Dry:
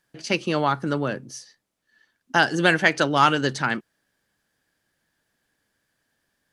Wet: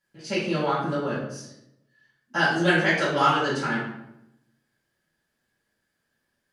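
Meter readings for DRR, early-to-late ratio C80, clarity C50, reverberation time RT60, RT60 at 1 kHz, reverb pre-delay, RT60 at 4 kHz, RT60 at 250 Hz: −10.5 dB, 5.5 dB, 2.0 dB, 0.85 s, 0.80 s, 3 ms, 0.55 s, 1.1 s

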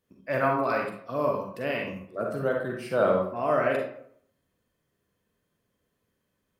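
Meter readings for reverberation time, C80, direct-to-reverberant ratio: 0.65 s, 7.5 dB, 0.0 dB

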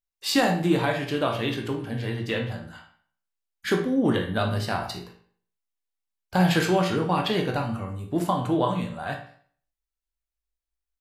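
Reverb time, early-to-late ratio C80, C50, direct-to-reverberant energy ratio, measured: 0.50 s, 11.5 dB, 7.0 dB, 2.0 dB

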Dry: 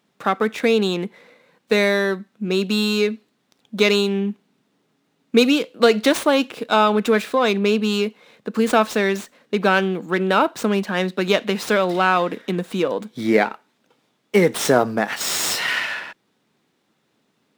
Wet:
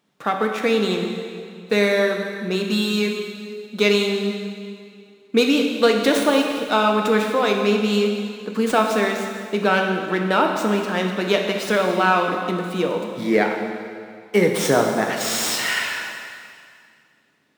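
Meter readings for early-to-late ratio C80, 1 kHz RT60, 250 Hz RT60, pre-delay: 5.0 dB, 2.2 s, 2.1 s, 4 ms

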